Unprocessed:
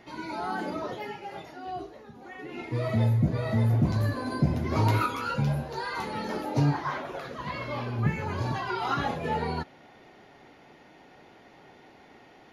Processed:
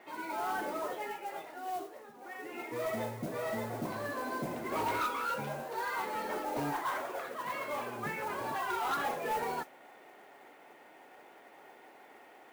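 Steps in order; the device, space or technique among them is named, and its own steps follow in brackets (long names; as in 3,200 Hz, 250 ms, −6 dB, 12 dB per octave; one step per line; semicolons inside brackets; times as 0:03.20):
carbon microphone (band-pass filter 420–2,600 Hz; soft clipping −27.5 dBFS, distortion −15 dB; noise that follows the level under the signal 17 dB)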